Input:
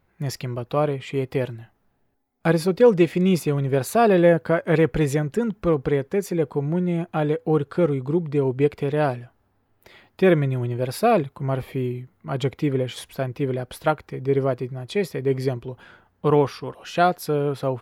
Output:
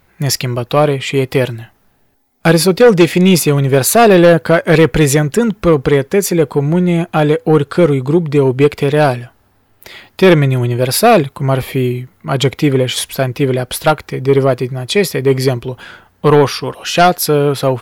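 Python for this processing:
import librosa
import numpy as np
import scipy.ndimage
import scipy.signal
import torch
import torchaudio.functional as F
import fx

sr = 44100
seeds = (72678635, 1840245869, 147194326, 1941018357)

p1 = fx.high_shelf(x, sr, hz=2200.0, db=9.5)
p2 = fx.fold_sine(p1, sr, drive_db=8, ceiling_db=-2.5)
y = p1 + F.gain(torch.from_numpy(p2), -4.0).numpy()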